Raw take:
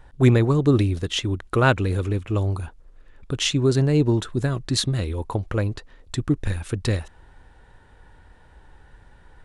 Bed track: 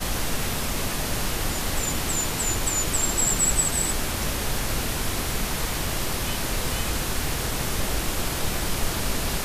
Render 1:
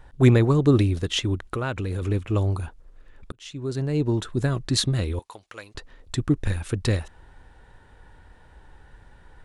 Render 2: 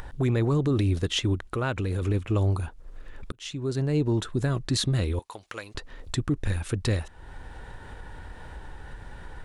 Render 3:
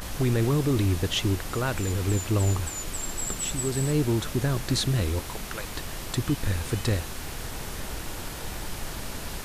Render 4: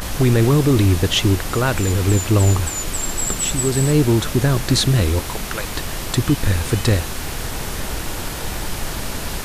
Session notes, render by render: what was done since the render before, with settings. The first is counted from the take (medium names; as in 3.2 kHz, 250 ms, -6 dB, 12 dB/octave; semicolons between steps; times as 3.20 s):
1.47–2.02 s: compression 4:1, threshold -25 dBFS; 3.32–4.49 s: fade in linear; 5.19–5.75 s: band-pass filter 5.8 kHz, Q 0.54
peak limiter -16.5 dBFS, peak gain reduction 11.5 dB; upward compressor, threshold -30 dBFS
add bed track -9.5 dB
trim +9 dB